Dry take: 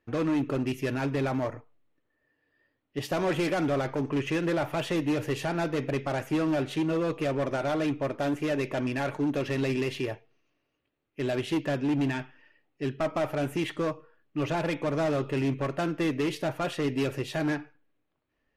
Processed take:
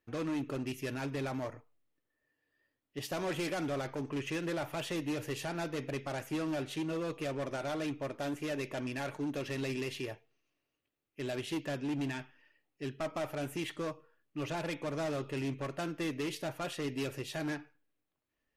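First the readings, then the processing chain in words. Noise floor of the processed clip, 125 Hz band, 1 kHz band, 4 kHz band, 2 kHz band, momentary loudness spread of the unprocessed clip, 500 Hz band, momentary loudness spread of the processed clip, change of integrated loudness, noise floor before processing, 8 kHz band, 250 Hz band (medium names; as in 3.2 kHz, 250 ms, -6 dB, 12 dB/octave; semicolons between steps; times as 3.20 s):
-85 dBFS, -8.5 dB, -8.0 dB, -4.5 dB, -6.5 dB, 7 LU, -8.5 dB, 6 LU, -8.0 dB, -78 dBFS, -1.5 dB, -8.5 dB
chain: treble shelf 3.5 kHz +8.5 dB; trim -8.5 dB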